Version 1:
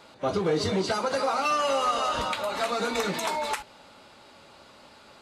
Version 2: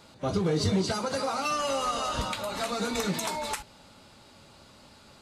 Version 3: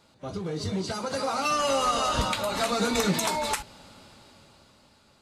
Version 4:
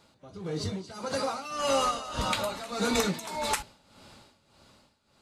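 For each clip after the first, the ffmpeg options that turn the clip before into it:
-af "bass=f=250:g=11,treble=f=4000:g=7,volume=0.596"
-af "dynaudnorm=f=220:g=11:m=4.22,volume=0.447"
-af "tremolo=f=1.7:d=0.8"

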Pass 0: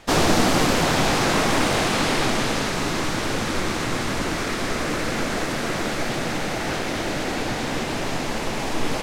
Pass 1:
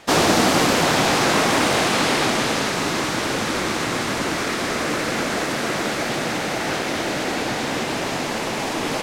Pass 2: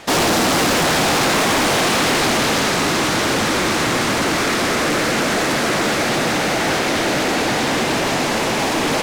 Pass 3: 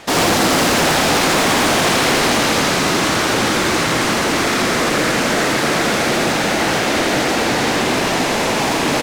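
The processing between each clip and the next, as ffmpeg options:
-af "highpass=f=180:p=1,volume=1.41"
-af "volume=11.9,asoftclip=hard,volume=0.0841,volume=2.24"
-af "aecho=1:1:82:0.668"

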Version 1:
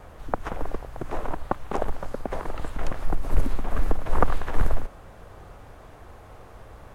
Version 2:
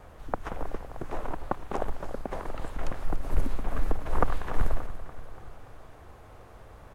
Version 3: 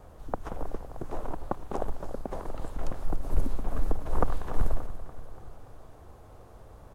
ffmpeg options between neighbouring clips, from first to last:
-af "aecho=1:1:289|578|867|1156|1445:0.211|0.114|0.0616|0.0333|0.018,volume=0.631"
-af "equalizer=f=2100:t=o:w=1.6:g=-8.5"

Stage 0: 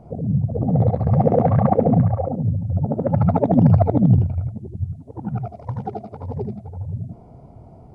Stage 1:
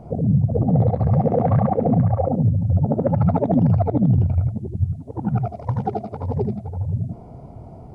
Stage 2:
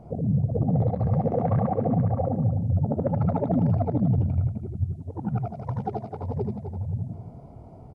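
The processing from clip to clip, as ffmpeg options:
-af "alimiter=limit=0.211:level=0:latency=1:release=135,volume=1.68"
-af "aecho=1:1:255:0.282,volume=0.501"

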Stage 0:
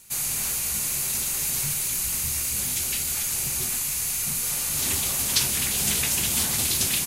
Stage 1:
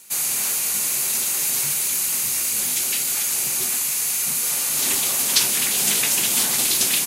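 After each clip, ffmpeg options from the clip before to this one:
-af "highpass=250,volume=1.68"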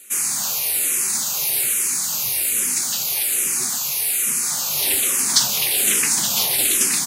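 -filter_complex "[0:a]asplit=2[s0][s1];[s1]afreqshift=-1.2[s2];[s0][s2]amix=inputs=2:normalize=1,volume=1.58"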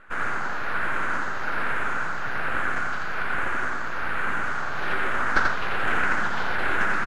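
-af "aeval=exprs='max(val(0),0)':c=same,lowpass=f=1500:t=q:w=4.9,aecho=1:1:87:0.668"

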